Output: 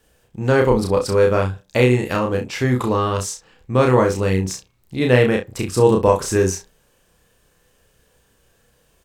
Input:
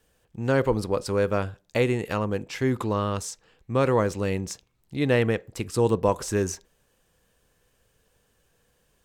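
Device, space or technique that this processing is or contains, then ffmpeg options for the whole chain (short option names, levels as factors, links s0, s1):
slapback doubling: -filter_complex "[0:a]asplit=3[s0][s1][s2];[s1]adelay=32,volume=0.708[s3];[s2]adelay=64,volume=0.251[s4];[s0][s3][s4]amix=inputs=3:normalize=0,volume=1.88"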